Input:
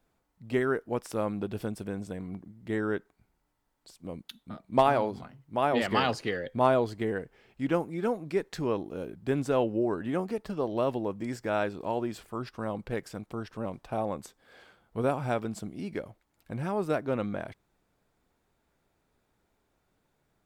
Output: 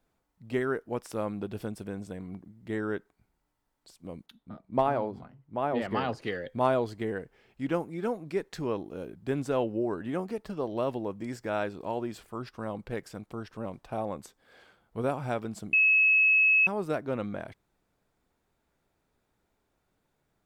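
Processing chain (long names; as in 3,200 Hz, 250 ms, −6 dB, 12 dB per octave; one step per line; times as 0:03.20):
0:04.26–0:06.22: high-shelf EQ 2,100 Hz −11.5 dB
0:15.73–0:16.67: beep over 2,580 Hz −16.5 dBFS
level −2 dB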